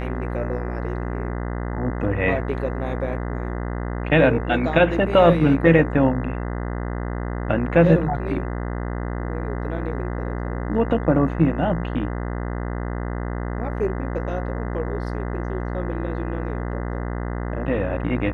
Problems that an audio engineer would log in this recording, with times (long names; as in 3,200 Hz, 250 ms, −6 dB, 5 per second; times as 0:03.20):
mains buzz 60 Hz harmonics 34 −27 dBFS